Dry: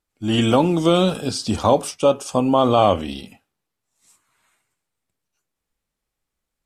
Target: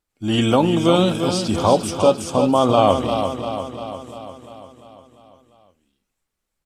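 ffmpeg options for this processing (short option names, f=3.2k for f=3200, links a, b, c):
-af "aecho=1:1:347|694|1041|1388|1735|2082|2429|2776:0.422|0.249|0.147|0.0866|0.0511|0.0301|0.0178|0.0105"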